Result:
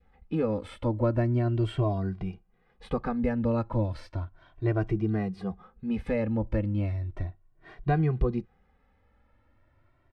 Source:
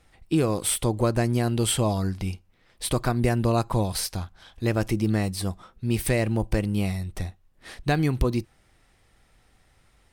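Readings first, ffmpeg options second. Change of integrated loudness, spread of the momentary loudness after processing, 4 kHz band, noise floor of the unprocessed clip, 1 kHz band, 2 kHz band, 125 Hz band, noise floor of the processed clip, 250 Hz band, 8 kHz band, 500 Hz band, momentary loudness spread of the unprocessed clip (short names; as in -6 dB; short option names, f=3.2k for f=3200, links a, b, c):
-4.0 dB, 11 LU, under -15 dB, -63 dBFS, -5.0 dB, -8.0 dB, -3.0 dB, -67 dBFS, -3.0 dB, under -30 dB, -3.0 dB, 10 LU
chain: -filter_complex "[0:a]lowpass=1.6k,adynamicequalizer=threshold=0.00631:dfrequency=930:dqfactor=1.7:tfrequency=930:tqfactor=1.7:attack=5:release=100:ratio=0.375:range=3:mode=cutabove:tftype=bell,asplit=2[a][b];[b]adelay=2,afreqshift=0.35[c];[a][c]amix=inputs=2:normalize=1"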